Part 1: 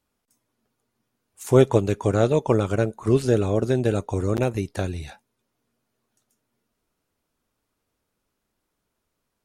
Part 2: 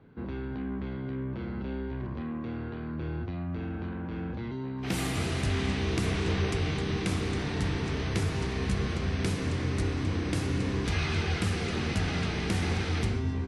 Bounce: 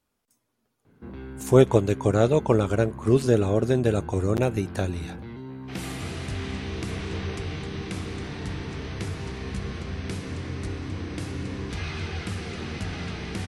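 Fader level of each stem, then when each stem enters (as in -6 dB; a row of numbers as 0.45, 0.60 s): -0.5, -3.0 dB; 0.00, 0.85 s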